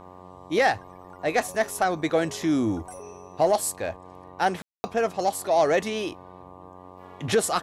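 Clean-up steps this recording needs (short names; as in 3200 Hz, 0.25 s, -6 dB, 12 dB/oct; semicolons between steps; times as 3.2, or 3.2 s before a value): de-hum 91.5 Hz, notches 13; room tone fill 4.62–4.84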